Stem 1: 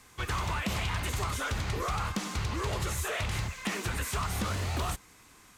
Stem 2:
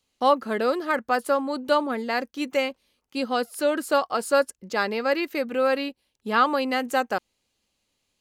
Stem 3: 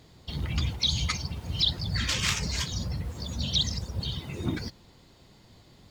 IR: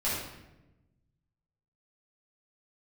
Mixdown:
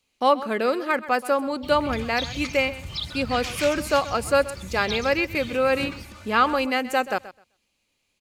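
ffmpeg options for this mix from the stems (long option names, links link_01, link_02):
-filter_complex "[0:a]acompressor=threshold=-36dB:ratio=3,aecho=1:1:3.4:0.9,adelay=1700,volume=-9.5dB[link_01];[1:a]volume=0.5dB,asplit=2[link_02][link_03];[link_03]volume=-16dB[link_04];[2:a]adelay=1350,volume=-6.5dB,asplit=2[link_05][link_06];[link_06]volume=-13dB[link_07];[link_04][link_07]amix=inputs=2:normalize=0,aecho=0:1:129|258|387:1|0.16|0.0256[link_08];[link_01][link_02][link_05][link_08]amix=inputs=4:normalize=0,equalizer=frequency=2400:width=4.5:gain=8"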